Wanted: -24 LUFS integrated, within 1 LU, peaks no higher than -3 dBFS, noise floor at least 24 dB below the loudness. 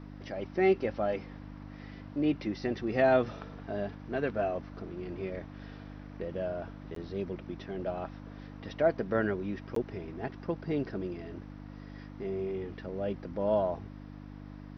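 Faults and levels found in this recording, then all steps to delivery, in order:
dropouts 2; longest dropout 13 ms; hum 50 Hz; harmonics up to 300 Hz; hum level -43 dBFS; loudness -33.5 LUFS; peak -13.5 dBFS; loudness target -24.0 LUFS
-> interpolate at 6.95/9.75, 13 ms; de-hum 50 Hz, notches 6; gain +9.5 dB

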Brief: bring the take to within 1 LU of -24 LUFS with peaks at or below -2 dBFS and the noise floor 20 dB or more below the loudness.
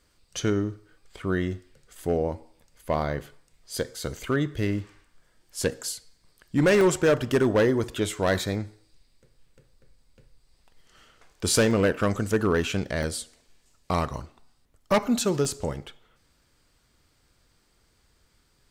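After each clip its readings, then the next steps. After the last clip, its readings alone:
clipped 0.8%; flat tops at -15.0 dBFS; dropouts 6; longest dropout 1.5 ms; loudness -26.0 LUFS; peak -15.0 dBFS; loudness target -24.0 LUFS
-> clip repair -15 dBFS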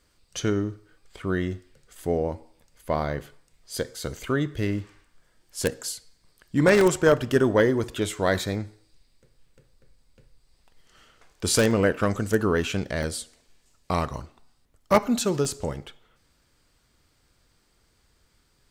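clipped 0.0%; dropouts 6; longest dropout 1.5 ms
-> interpolate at 6.81/7.4/8.28/11.71/13.03/15.45, 1.5 ms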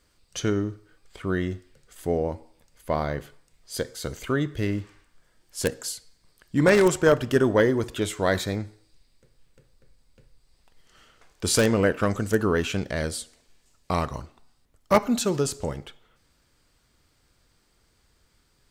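dropouts 0; loudness -25.5 LUFS; peak -6.0 dBFS; loudness target -24.0 LUFS
-> gain +1.5 dB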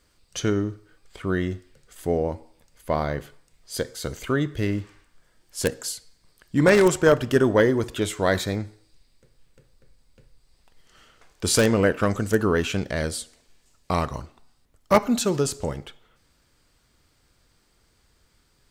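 loudness -24.0 LUFS; peak -4.5 dBFS; noise floor -65 dBFS

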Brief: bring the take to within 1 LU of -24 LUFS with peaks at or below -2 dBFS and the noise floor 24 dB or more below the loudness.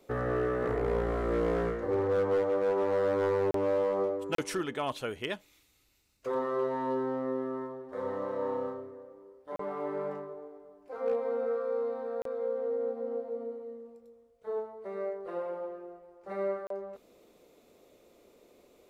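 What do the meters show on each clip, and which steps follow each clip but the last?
clipped 1.0%; flat tops at -23.0 dBFS; dropouts 5; longest dropout 33 ms; loudness -32.5 LUFS; peak -23.0 dBFS; loudness target -24.0 LUFS
-> clip repair -23 dBFS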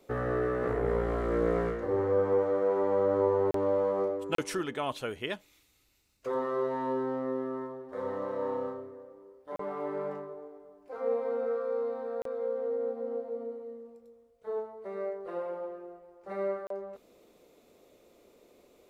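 clipped 0.0%; dropouts 5; longest dropout 33 ms
-> interpolate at 3.51/4.35/9.56/12.22/16.67, 33 ms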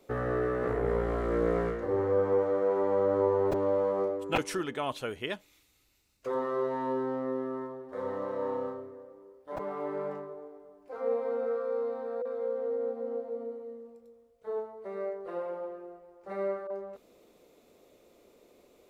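dropouts 0; loudness -32.0 LUFS; peak -14.0 dBFS; loudness target -24.0 LUFS
-> gain +8 dB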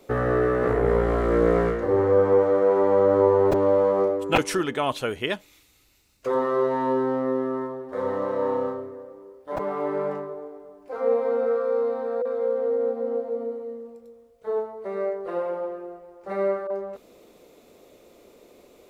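loudness -24.0 LUFS; peak -6.0 dBFS; noise floor -56 dBFS

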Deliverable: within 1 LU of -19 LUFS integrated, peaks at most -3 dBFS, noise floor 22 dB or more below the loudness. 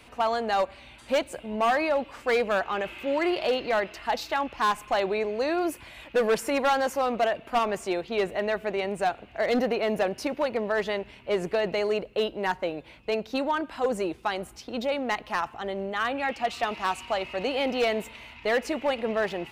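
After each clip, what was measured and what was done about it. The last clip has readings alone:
clipped 1.2%; flat tops at -18.5 dBFS; loudness -28.0 LUFS; peak -18.5 dBFS; loudness target -19.0 LUFS
-> clip repair -18.5 dBFS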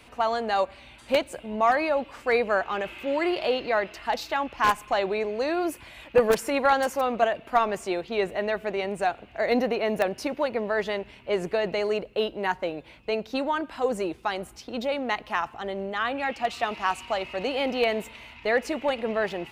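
clipped 0.0%; loudness -27.0 LUFS; peak -9.5 dBFS; loudness target -19.0 LUFS
-> gain +8 dB; limiter -3 dBFS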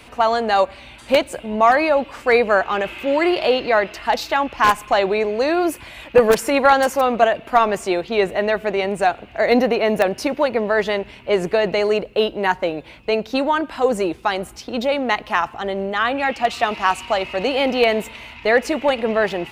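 loudness -19.0 LUFS; peak -3.0 dBFS; noise floor -43 dBFS

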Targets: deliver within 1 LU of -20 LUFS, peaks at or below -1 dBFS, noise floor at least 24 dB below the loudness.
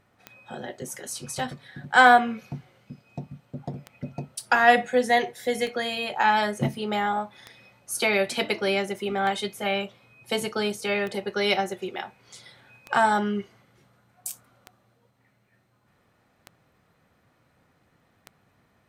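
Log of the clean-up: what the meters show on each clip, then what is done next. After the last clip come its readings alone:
clicks 11; loudness -24.0 LUFS; peak -3.5 dBFS; loudness target -20.0 LUFS
-> de-click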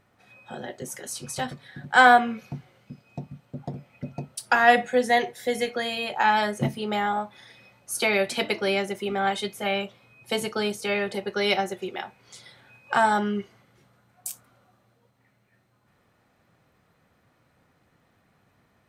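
clicks 0; loudness -24.5 LUFS; peak -3.5 dBFS; loudness target -20.0 LUFS
-> gain +4.5 dB; limiter -1 dBFS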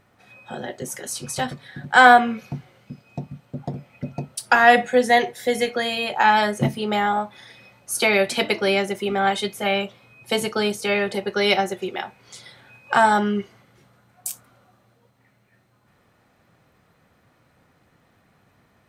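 loudness -20.0 LUFS; peak -1.0 dBFS; noise floor -62 dBFS

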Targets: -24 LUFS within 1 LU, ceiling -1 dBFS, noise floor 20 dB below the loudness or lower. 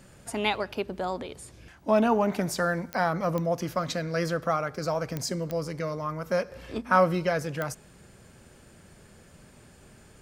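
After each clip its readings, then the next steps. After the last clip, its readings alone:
clicks 5; loudness -28.5 LUFS; peak -8.0 dBFS; loudness target -24.0 LUFS
-> de-click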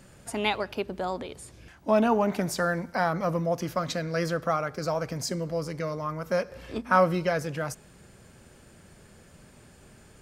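clicks 0; loudness -28.5 LUFS; peak -8.0 dBFS; loudness target -24.0 LUFS
-> gain +4.5 dB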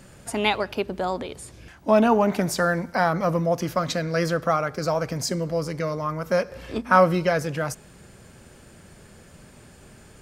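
loudness -24.0 LUFS; peak -3.5 dBFS; noise floor -50 dBFS

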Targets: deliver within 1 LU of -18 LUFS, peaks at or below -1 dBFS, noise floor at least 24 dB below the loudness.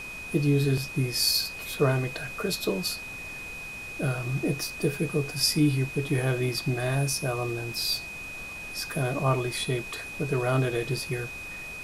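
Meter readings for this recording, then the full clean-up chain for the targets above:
steady tone 2500 Hz; tone level -37 dBFS; noise floor -39 dBFS; noise floor target -52 dBFS; loudness -28.0 LUFS; peak -11.5 dBFS; loudness target -18.0 LUFS
-> notch 2500 Hz, Q 30; noise print and reduce 13 dB; gain +10 dB

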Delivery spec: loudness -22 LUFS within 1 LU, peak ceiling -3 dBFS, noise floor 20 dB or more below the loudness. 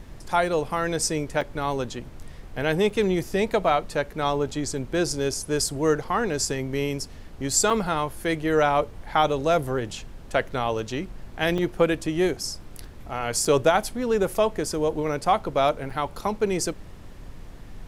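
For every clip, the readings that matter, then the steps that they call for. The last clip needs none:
dropouts 6; longest dropout 4.7 ms; noise floor -43 dBFS; noise floor target -45 dBFS; loudness -25.0 LUFS; peak -7.5 dBFS; loudness target -22.0 LUFS
-> interpolate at 1.41/2.9/7.7/11.58/13.45/15.9, 4.7 ms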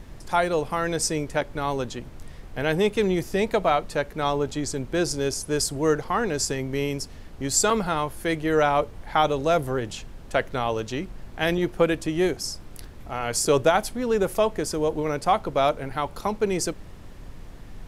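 dropouts 0; noise floor -43 dBFS; noise floor target -45 dBFS
-> noise print and reduce 6 dB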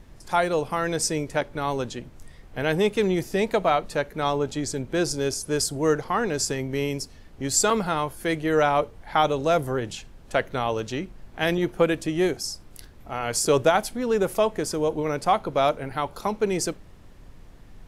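noise floor -48 dBFS; loudness -25.0 LUFS; peak -8.0 dBFS; loudness target -22.0 LUFS
-> gain +3 dB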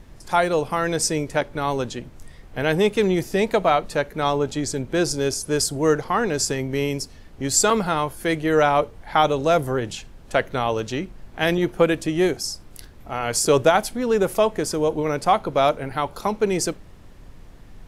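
loudness -22.0 LUFS; peak -5.0 dBFS; noise floor -45 dBFS

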